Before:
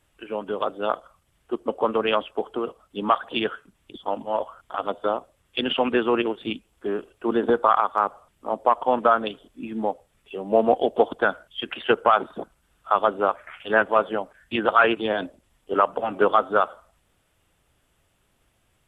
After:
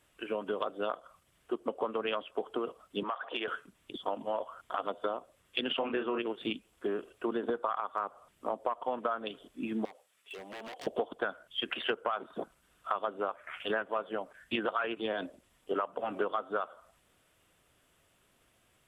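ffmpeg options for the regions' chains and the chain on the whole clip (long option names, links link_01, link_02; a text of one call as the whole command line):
ffmpeg -i in.wav -filter_complex "[0:a]asettb=1/sr,asplit=3[link_01][link_02][link_03];[link_01]atrim=end=3.034[link_04];[link_02]atrim=start=3.03:end=3.48,asetpts=PTS-STARTPTS,afade=type=in:duration=0.004:curve=qsin,afade=type=out:start_time=0.446:duration=0.004:curve=qsin,acrossover=split=370 3300:gain=0.1 1 0.0891[link_05][link_06][link_07];[link_05][link_06][link_07]amix=inputs=3:normalize=0,acompressor=threshold=-30dB:ratio=3:attack=3.2:release=140:knee=1:detection=peak[link_08];[link_03]atrim=start=3.476[link_09];[link_04][link_08]acrossfade=duration=0.004:curve1=hsin:curve2=qsin[link_10];[link_10][link_09]acrossfade=duration=0.004:curve1=qsin:curve2=hsin,asettb=1/sr,asplit=3[link_11][link_12][link_13];[link_11]atrim=end=5.794[link_14];[link_12]atrim=start=5.79:end=6.19,asetpts=PTS-STARTPTS,afade=type=in:duration=0.004:curve=qsin,afade=type=out:start_time=0.396:duration=0.004:curve=qsin,lowpass=3400,asplit=2[link_15][link_16];[link_16]adelay=30,volume=-5.5dB[link_17];[link_15][link_17]amix=inputs=2:normalize=0,atrim=end_sample=17640[link_18];[link_13]atrim=start=6.186[link_19];[link_14][link_18]acrossfade=duration=0.004:curve1=hsin:curve2=qsin[link_20];[link_20][link_19]acrossfade=duration=0.004:curve1=qsin:curve2=hsin,asettb=1/sr,asplit=3[link_21][link_22][link_23];[link_21]atrim=end=9.854[link_24];[link_22]atrim=start=9.85:end=10.87,asetpts=PTS-STARTPTS,afade=type=in:duration=0.004:curve=qsin,afade=type=out:start_time=1.016:duration=0.004:curve=qsin,highpass=frequency=1500:poles=1,acompressor=threshold=-35dB:ratio=3:attack=3.2:release=140:knee=1:detection=peak,aeval=exprs='0.0126*(abs(mod(val(0)/0.0126+3,4)-2)-1)':channel_layout=same[link_25];[link_23]atrim=start=10.866[link_26];[link_24][link_25]acrossfade=duration=0.004:curve1=hsin:curve2=qsin[link_27];[link_27][link_26]acrossfade=duration=0.004:curve1=qsin:curve2=hsin,lowshelf=frequency=110:gain=-11,bandreject=frequency=840:width=12,acompressor=threshold=-30dB:ratio=6" out.wav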